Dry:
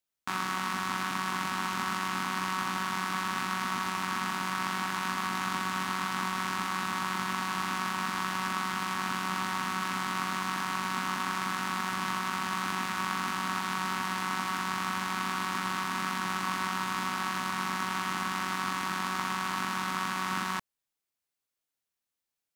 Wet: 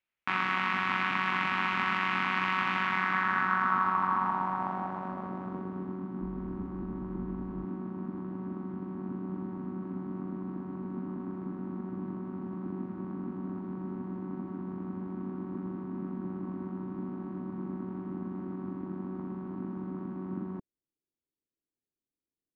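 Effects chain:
0:06.21–0:07.65: sub-octave generator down 2 octaves, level −5 dB
low-pass filter sweep 2,400 Hz → 340 Hz, 0:02.79–0:06.06

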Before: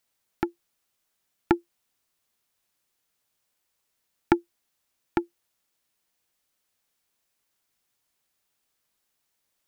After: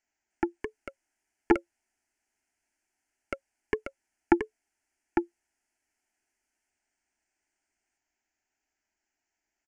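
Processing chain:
downsampling to 16,000 Hz
delay with pitch and tempo change per echo 303 ms, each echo +4 semitones, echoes 2
phaser with its sweep stopped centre 760 Hz, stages 8

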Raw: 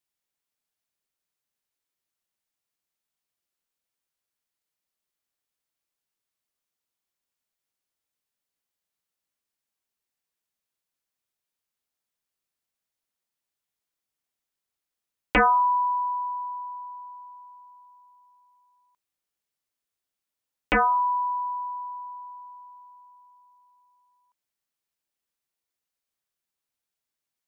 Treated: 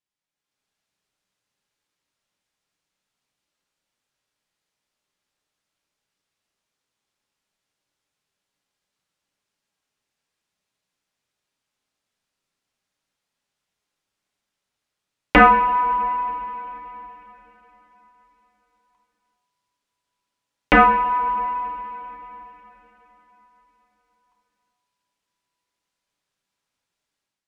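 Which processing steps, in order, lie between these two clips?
automatic gain control gain up to 10.5 dB
high-frequency loss of the air 56 metres
coupled-rooms reverb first 0.59 s, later 4.4 s, from −18 dB, DRR 2.5 dB
level −2.5 dB

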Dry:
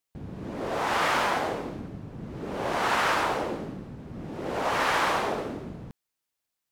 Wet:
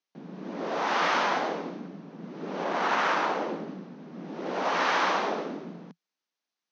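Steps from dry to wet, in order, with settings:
0:02.64–0:03.68: running median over 9 samples
Chebyshev band-pass filter 170–6,200 Hz, order 5

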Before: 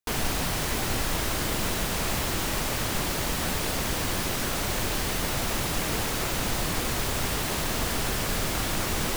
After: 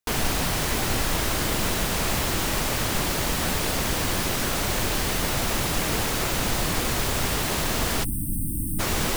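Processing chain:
time-frequency box erased 0:08.04–0:08.80, 340–8,100 Hz
level +3 dB

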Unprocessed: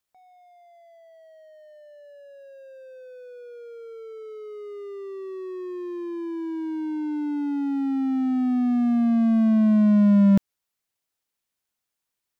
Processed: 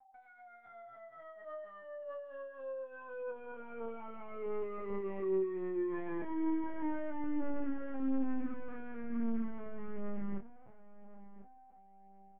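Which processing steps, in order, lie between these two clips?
gain on one half-wave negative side −7 dB
downward compressor 16 to 1, threshold −31 dBFS, peak gain reduction 17 dB
bit-depth reduction 12 bits, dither none
flanger 0.73 Hz, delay 7.3 ms, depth 3.5 ms, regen +16%
steady tone 780 Hz −66 dBFS
loudspeaker in its box 430–2,200 Hz, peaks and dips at 460 Hz −9 dB, 720 Hz −9 dB, 1,100 Hz −4 dB
on a send: repeating echo 1,046 ms, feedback 32%, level −16 dB
on the sum: linear-prediction vocoder at 8 kHz pitch kept
double-tracking delay 26 ms −5 dB
level +11.5 dB

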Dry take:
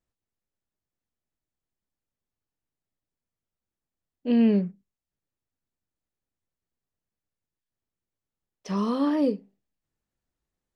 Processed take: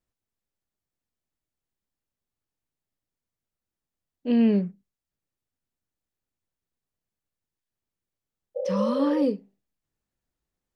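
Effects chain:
healed spectral selection 0:08.59–0:09.20, 370–810 Hz after

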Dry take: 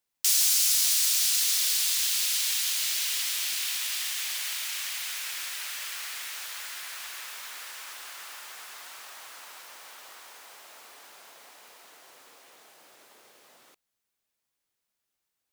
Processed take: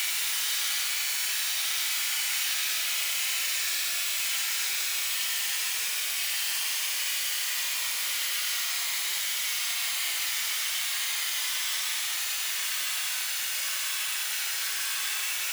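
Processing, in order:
flutter between parallel walls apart 7.9 metres, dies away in 1.4 s
extreme stretch with random phases 23×, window 0.05 s, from 0:04.64

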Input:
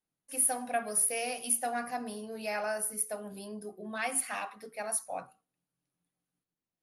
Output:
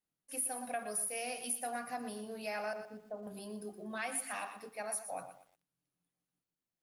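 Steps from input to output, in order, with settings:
0:02.73–0:03.27: Bessel low-pass filter 770 Hz, order 8
downward compressor 2.5 to 1, threshold −33 dBFS, peak gain reduction 7 dB
feedback echo at a low word length 120 ms, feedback 35%, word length 10 bits, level −10.5 dB
level −3 dB

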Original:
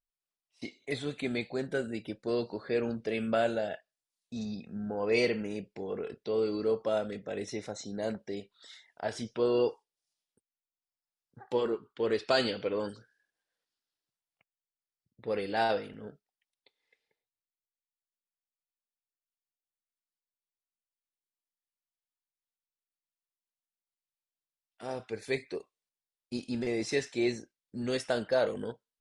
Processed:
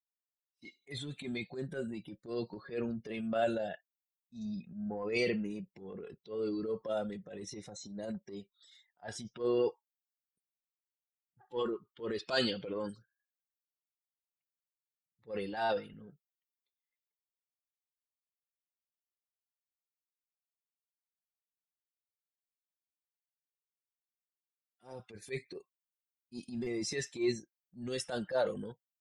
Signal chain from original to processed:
spectral dynamics exaggerated over time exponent 1.5
comb filter 5.6 ms, depth 32%
transient designer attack −11 dB, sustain +5 dB

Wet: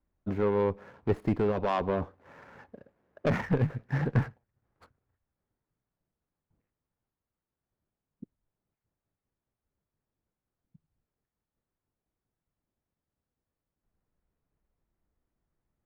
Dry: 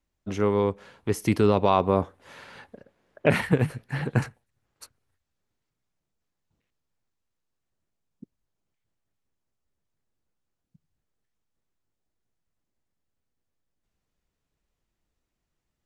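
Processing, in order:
running median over 15 samples
bass and treble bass +1 dB, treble −13 dB
tube saturation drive 17 dB, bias 0.35
speech leveller within 4 dB 0.5 s

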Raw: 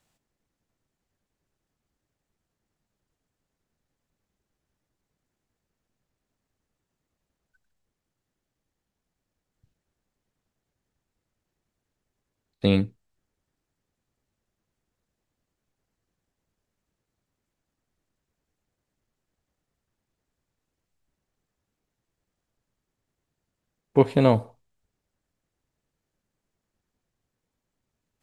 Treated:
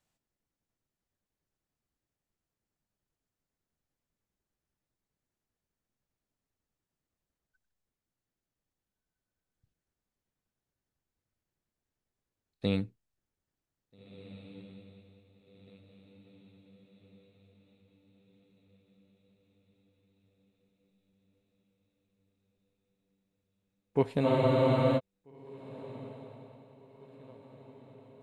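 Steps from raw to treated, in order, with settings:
feedback delay with all-pass diffusion 1,743 ms, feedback 50%, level −14 dB
frozen spectrum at 0:24.27, 0.71 s
level −9 dB

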